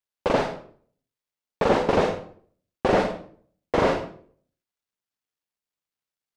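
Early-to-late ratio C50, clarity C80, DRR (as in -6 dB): 7.0 dB, 11.5 dB, 5.0 dB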